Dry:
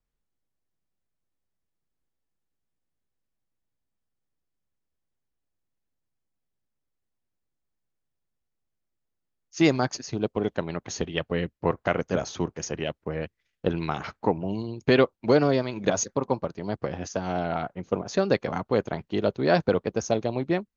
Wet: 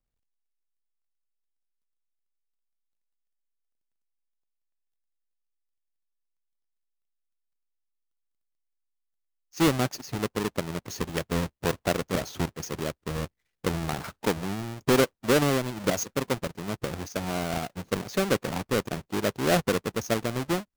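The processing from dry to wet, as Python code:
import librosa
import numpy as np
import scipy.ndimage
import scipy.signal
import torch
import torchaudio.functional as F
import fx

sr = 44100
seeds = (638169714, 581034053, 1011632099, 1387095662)

y = fx.halfwave_hold(x, sr)
y = y * 10.0 ** (-6.0 / 20.0)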